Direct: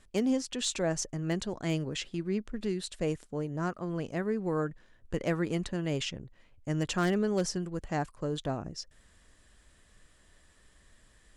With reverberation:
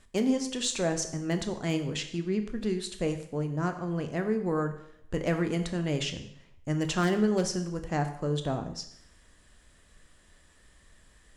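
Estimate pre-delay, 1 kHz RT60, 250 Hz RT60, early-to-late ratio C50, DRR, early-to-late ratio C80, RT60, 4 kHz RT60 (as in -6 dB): 7 ms, 0.75 s, 0.75 s, 10.5 dB, 6.5 dB, 12.5 dB, 0.75 s, 0.65 s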